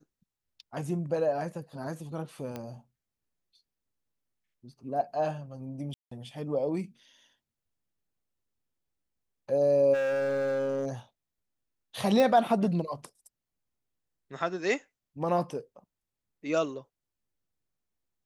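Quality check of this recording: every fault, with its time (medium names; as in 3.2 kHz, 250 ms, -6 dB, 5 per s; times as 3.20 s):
2.56 s: pop -23 dBFS
5.94–6.11 s: dropout 174 ms
9.93–10.87 s: clipped -26.5 dBFS
12.20 s: pop -14 dBFS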